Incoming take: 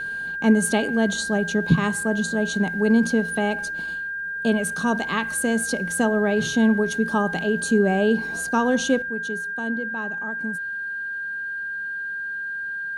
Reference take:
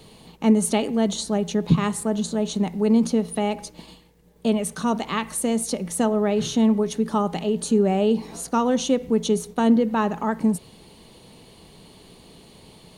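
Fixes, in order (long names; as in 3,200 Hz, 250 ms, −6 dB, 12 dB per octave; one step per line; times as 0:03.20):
notch filter 1,600 Hz, Q 30
level 0 dB, from 0:09.02 +11.5 dB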